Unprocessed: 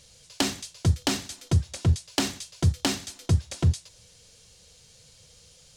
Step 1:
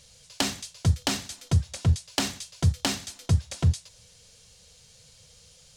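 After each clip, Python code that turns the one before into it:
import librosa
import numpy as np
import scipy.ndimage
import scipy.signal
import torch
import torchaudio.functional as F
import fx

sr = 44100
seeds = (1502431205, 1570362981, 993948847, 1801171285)

y = fx.peak_eq(x, sr, hz=330.0, db=-8.0, octaves=0.47)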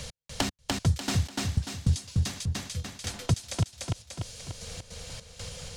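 y = fx.step_gate(x, sr, bpm=153, pattern='x...x..xxx.x', floor_db=-60.0, edge_ms=4.5)
y = fx.echo_feedback(y, sr, ms=294, feedback_pct=35, wet_db=-3)
y = fx.band_squash(y, sr, depth_pct=70)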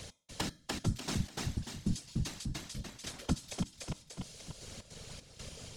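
y = fx.comb_fb(x, sr, f0_hz=190.0, decay_s=0.42, harmonics='odd', damping=0.0, mix_pct=60)
y = fx.whisperise(y, sr, seeds[0])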